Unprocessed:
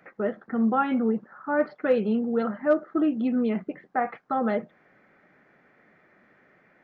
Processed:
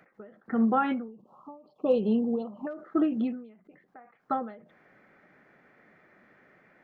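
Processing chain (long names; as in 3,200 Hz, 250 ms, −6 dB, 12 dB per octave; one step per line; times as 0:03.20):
0:01.08–0:02.67: elliptic band-stop filter 1,100–2,800 Hz, stop band 40 dB
every ending faded ahead of time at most 100 dB per second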